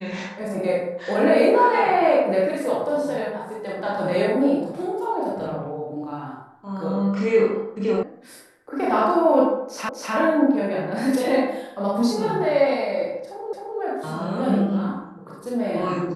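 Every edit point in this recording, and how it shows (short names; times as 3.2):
8.03 sound cut off
9.89 repeat of the last 0.25 s
13.53 repeat of the last 0.26 s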